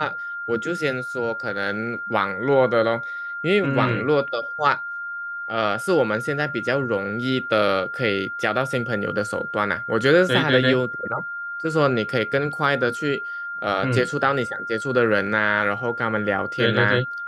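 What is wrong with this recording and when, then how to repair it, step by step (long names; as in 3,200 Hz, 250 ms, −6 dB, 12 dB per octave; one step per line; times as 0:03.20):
whistle 1,400 Hz −28 dBFS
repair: notch filter 1,400 Hz, Q 30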